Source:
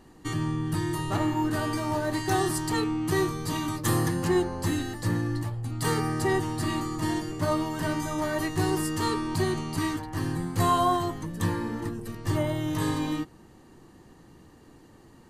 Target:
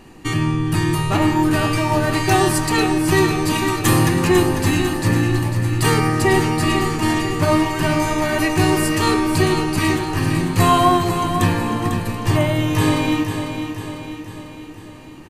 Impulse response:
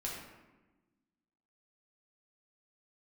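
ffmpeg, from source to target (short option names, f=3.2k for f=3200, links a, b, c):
-filter_complex "[0:a]equalizer=f=2.5k:t=o:w=0.33:g=11.5,aecho=1:1:498|996|1494|1992|2490|2988:0.398|0.215|0.116|0.0627|0.0339|0.0183,asplit=2[a][b];[1:a]atrim=start_sample=2205[c];[b][c]afir=irnorm=-1:irlink=0,volume=-10dB[d];[a][d]amix=inputs=2:normalize=0,volume=7.5dB"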